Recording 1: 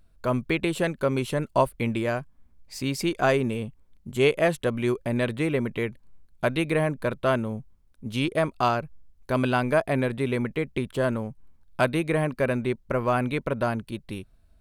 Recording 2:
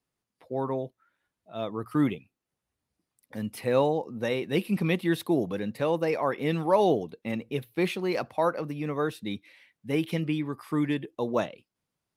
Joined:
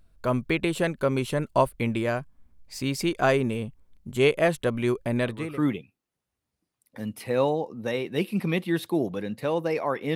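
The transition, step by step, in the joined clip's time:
recording 1
5.42 switch to recording 2 from 1.79 s, crossfade 0.46 s linear

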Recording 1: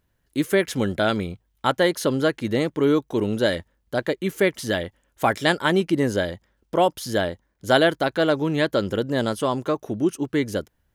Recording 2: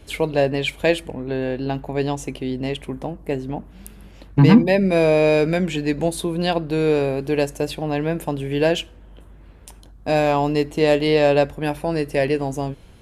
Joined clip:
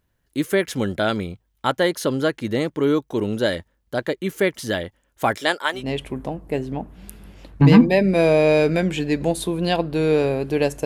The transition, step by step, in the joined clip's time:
recording 1
5.36–5.9 HPF 260 Hz -> 1200 Hz
5.81 switch to recording 2 from 2.58 s, crossfade 0.18 s

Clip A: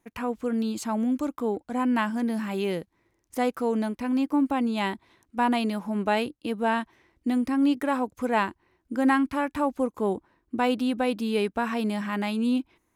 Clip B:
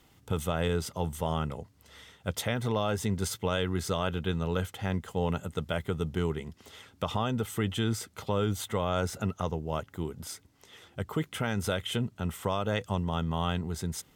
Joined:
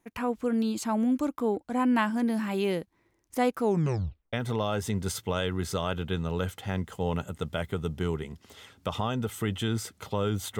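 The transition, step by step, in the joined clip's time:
clip A
3.62 tape stop 0.71 s
4.33 switch to clip B from 2.49 s

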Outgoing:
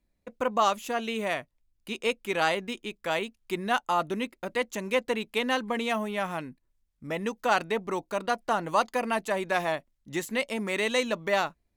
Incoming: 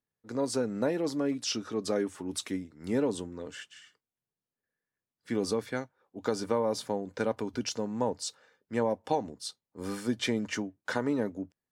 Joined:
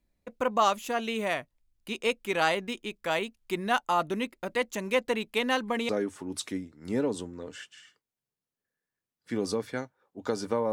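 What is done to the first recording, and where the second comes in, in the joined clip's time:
outgoing
5.89 switch to incoming from 1.88 s

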